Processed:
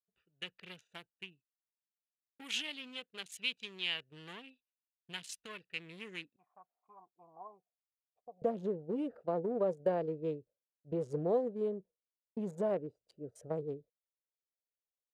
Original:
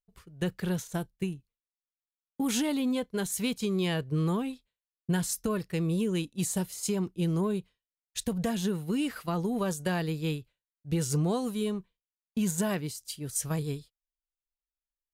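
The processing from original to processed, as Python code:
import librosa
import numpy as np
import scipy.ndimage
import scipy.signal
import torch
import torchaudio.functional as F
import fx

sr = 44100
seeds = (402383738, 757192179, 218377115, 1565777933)

y = fx.wiener(x, sr, points=41)
y = fx.filter_sweep_bandpass(y, sr, from_hz=2800.0, to_hz=540.0, start_s=5.68, end_s=7.97, q=3.0)
y = fx.formant_cascade(y, sr, vowel='a', at=(6.36, 8.42))
y = y * 10.0 ** (6.0 / 20.0)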